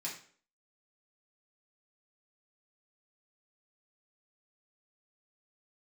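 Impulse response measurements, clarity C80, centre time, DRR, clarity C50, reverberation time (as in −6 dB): 11.0 dB, 27 ms, −5.5 dB, 6.5 dB, 0.50 s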